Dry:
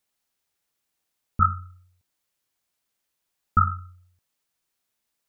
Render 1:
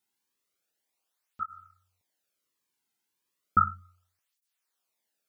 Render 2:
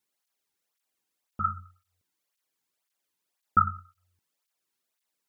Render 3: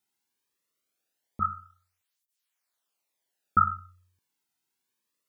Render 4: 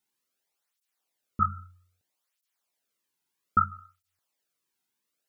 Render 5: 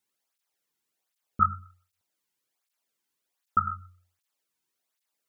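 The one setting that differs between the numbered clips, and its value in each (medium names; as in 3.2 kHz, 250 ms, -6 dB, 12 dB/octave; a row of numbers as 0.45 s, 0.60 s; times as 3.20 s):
cancelling through-zero flanger, nulls at: 0.34 Hz, 1.9 Hz, 0.22 Hz, 0.62 Hz, 1.3 Hz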